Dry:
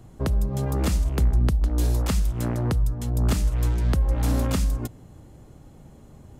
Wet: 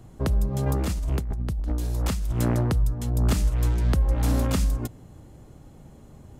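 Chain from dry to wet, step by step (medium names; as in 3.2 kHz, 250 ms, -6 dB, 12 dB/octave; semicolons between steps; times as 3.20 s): 0.66–2.72 s: compressor with a negative ratio -25 dBFS, ratio -1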